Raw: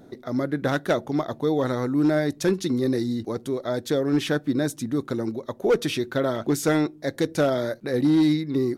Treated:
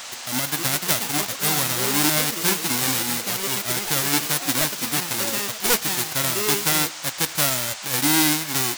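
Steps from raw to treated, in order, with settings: spectral whitening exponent 0.1; echoes that change speed 0.34 s, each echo +5 st, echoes 3, each echo -6 dB; band noise 550–7800 Hz -36 dBFS

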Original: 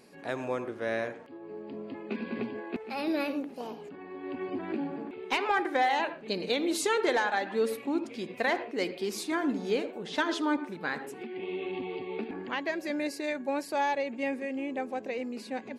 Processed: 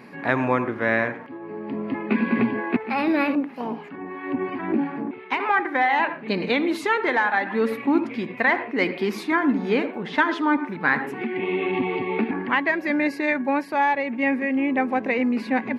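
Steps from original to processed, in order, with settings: graphic EQ 125/250/1000/2000/8000 Hz +10/+9/+10/+12/-10 dB; vocal rider within 4 dB 0.5 s; 3.35–5.4 harmonic tremolo 2.9 Hz, depth 70%, crossover 880 Hz

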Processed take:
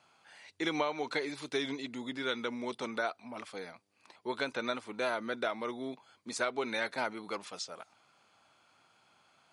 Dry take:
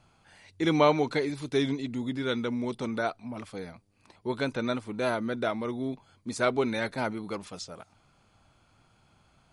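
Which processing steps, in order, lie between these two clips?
weighting filter A; compressor 10:1, threshold -28 dBFS, peak gain reduction 11.5 dB

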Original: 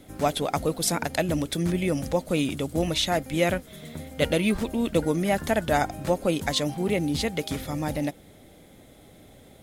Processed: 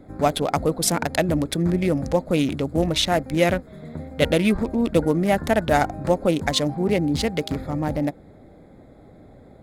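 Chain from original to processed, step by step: Wiener smoothing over 15 samples; gain +4.5 dB

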